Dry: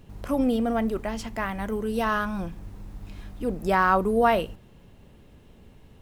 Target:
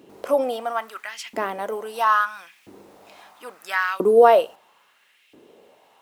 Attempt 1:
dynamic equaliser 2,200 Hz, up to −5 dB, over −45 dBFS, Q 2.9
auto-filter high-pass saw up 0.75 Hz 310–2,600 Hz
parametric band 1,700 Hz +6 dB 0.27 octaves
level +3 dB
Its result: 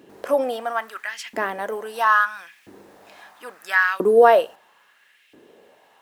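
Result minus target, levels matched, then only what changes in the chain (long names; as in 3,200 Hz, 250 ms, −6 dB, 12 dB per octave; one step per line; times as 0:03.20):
2,000 Hz band +5.0 dB
change: parametric band 1,700 Hz −2.5 dB 0.27 octaves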